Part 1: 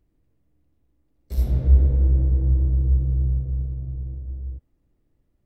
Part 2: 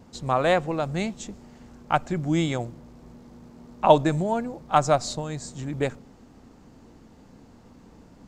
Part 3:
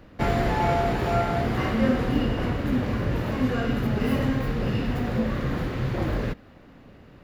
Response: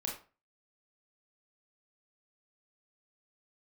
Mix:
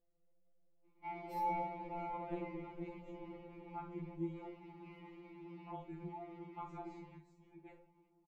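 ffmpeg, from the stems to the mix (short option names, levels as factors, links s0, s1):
-filter_complex "[0:a]equalizer=f=520:w=1.5:g=14,acompressor=threshold=0.112:ratio=6,aecho=1:1:7.3:0.42,volume=0.211[s0];[1:a]lowpass=f=1000:p=1,adelay=1850,volume=0.531,asplit=2[s1][s2];[s2]volume=0.0708[s3];[2:a]adelay=850,volume=0.398[s4];[s1][s4]amix=inputs=2:normalize=0,asplit=3[s5][s6][s7];[s5]bandpass=f=300:t=q:w=8,volume=1[s8];[s6]bandpass=f=870:t=q:w=8,volume=0.501[s9];[s7]bandpass=f=2240:t=q:w=8,volume=0.355[s10];[s8][s9][s10]amix=inputs=3:normalize=0,alimiter=level_in=2.99:limit=0.0631:level=0:latency=1:release=125,volume=0.335,volume=1[s11];[3:a]atrim=start_sample=2205[s12];[s3][s12]afir=irnorm=-1:irlink=0[s13];[s0][s11][s13]amix=inputs=3:normalize=0,afftfilt=real='re*2.83*eq(mod(b,8),0)':imag='im*2.83*eq(mod(b,8),0)':win_size=2048:overlap=0.75"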